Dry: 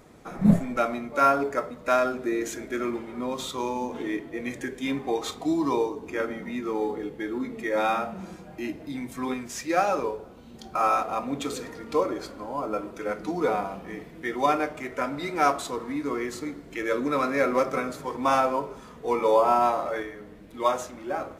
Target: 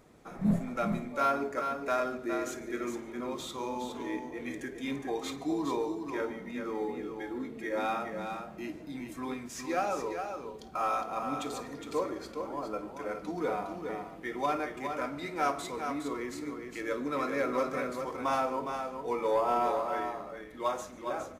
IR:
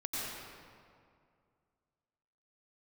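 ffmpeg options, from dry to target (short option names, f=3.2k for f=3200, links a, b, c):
-filter_complex "[0:a]asplit=2[a][b];[1:a]atrim=start_sample=2205,atrim=end_sample=4410,adelay=53[c];[b][c]afir=irnorm=-1:irlink=0,volume=-13dB[d];[a][d]amix=inputs=2:normalize=0,asoftclip=type=tanh:threshold=-11dB,asplit=2[e][f];[f]aecho=0:1:412:0.473[g];[e][g]amix=inputs=2:normalize=0,volume=-7dB"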